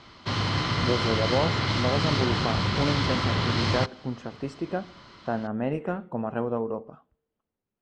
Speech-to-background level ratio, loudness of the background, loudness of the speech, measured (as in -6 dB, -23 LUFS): -5.0 dB, -26.0 LUFS, -31.0 LUFS